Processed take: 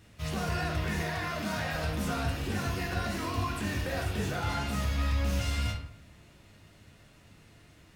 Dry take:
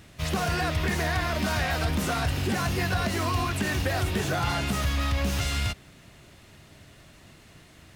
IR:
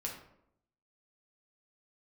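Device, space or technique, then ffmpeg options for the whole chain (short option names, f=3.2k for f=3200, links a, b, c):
bathroom: -filter_complex "[1:a]atrim=start_sample=2205[a];[0:a][a]afir=irnorm=-1:irlink=0,asettb=1/sr,asplit=3[b][c][d];[b]atrim=end=1.024[e];[c]atrim=start=1.02:end=1.75,asetpts=PTS-STARTPTS,afade=t=in:d=0.004:c=qsin,afade=t=out:st=0.726:d=0.004:c=qsin,highpass=110[f];[d]atrim=start=1.746[g];[e][f]acrossfade=d=0.004:c1=hsin:c2=qsin[h];[h][g]acrossfade=d=0.004:c1=qsin:c2=hsin,volume=-6dB"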